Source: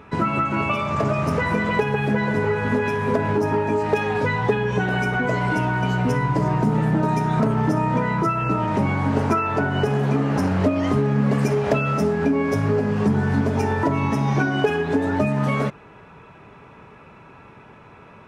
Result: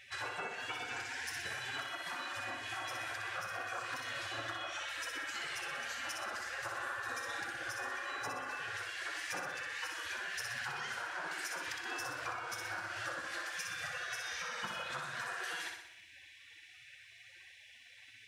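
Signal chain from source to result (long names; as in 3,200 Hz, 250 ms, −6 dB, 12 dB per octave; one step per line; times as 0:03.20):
elliptic high-pass filter 150 Hz, stop band 40 dB
high shelf with overshoot 1,600 Hz −8 dB, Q 3
gate on every frequency bin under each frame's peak −30 dB weak
downward compressor, threshold −55 dBFS, peak gain reduction 16 dB
on a send: flutter between parallel walls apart 10.6 metres, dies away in 0.77 s
on the sum: level +15 dB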